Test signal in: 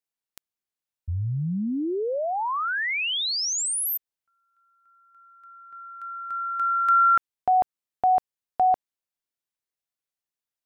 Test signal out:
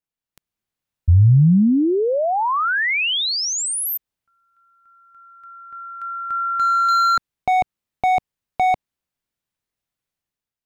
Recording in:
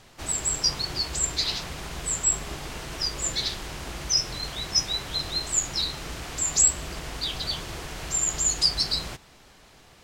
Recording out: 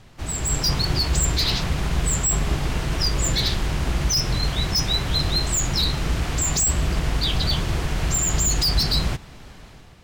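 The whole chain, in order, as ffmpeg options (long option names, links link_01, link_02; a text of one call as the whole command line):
ffmpeg -i in.wav -af "volume=22dB,asoftclip=hard,volume=-22dB,bass=frequency=250:gain=9,treble=frequency=4000:gain=-4,dynaudnorm=framelen=120:gausssize=7:maxgain=7dB" out.wav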